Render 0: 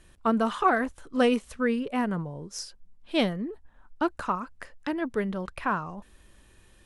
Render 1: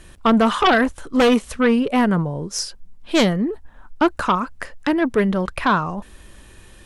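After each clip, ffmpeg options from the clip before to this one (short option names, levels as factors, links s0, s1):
-af "aeval=exprs='0.299*sin(PI/2*2.51*val(0)/0.299)':c=same"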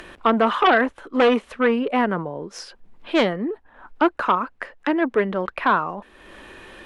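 -filter_complex "[0:a]acrossover=split=250 3400:gain=0.141 1 0.126[s0][s1][s2];[s0][s1][s2]amix=inputs=3:normalize=0,acompressor=mode=upward:threshold=0.0251:ratio=2.5"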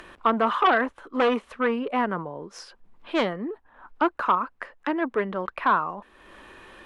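-af "equalizer=f=1100:w=1.9:g=5,volume=0.501"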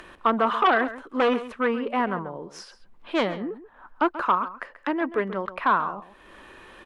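-filter_complex "[0:a]asplit=2[s0][s1];[s1]adelay=134.1,volume=0.2,highshelf=f=4000:g=-3.02[s2];[s0][s2]amix=inputs=2:normalize=0"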